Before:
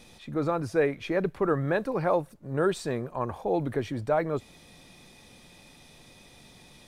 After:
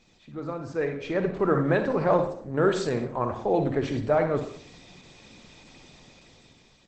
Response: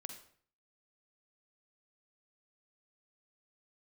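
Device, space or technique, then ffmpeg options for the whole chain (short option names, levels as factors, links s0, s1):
speakerphone in a meeting room: -filter_complex "[0:a]asplit=3[s0][s1][s2];[s0]afade=t=out:st=2.21:d=0.02[s3];[s1]equalizer=f=67:w=0.92:g=-2.5,afade=t=in:st=2.21:d=0.02,afade=t=out:st=3.88:d=0.02[s4];[s2]afade=t=in:st=3.88:d=0.02[s5];[s3][s4][s5]amix=inputs=3:normalize=0[s6];[1:a]atrim=start_sample=2205[s7];[s6][s7]afir=irnorm=-1:irlink=0,dynaudnorm=f=310:g=7:m=3.55,volume=0.708" -ar 48000 -c:a libopus -b:a 12k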